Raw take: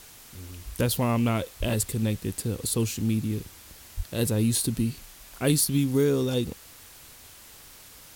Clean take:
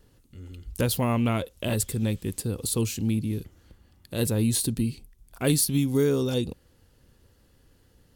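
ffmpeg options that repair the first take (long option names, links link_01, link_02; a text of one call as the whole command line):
ffmpeg -i in.wav -filter_complex "[0:a]asplit=3[link_01][link_02][link_03];[link_01]afade=type=out:start_time=1.59:duration=0.02[link_04];[link_02]highpass=frequency=140:width=0.5412,highpass=frequency=140:width=1.3066,afade=type=in:start_time=1.59:duration=0.02,afade=type=out:start_time=1.71:duration=0.02[link_05];[link_03]afade=type=in:start_time=1.71:duration=0.02[link_06];[link_04][link_05][link_06]amix=inputs=3:normalize=0,asplit=3[link_07][link_08][link_09];[link_07]afade=type=out:start_time=3.96:duration=0.02[link_10];[link_08]highpass=frequency=140:width=0.5412,highpass=frequency=140:width=1.3066,afade=type=in:start_time=3.96:duration=0.02,afade=type=out:start_time=4.08:duration=0.02[link_11];[link_09]afade=type=in:start_time=4.08:duration=0.02[link_12];[link_10][link_11][link_12]amix=inputs=3:normalize=0,afwtdn=0.004" out.wav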